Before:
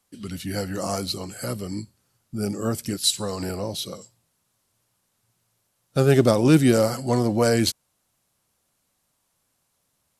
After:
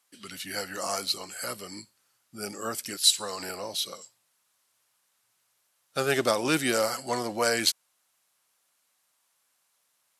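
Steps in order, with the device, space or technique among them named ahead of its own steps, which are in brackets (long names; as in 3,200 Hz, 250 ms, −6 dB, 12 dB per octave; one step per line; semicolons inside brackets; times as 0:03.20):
filter by subtraction (in parallel: low-pass filter 1,600 Hz 12 dB per octave + polarity inversion)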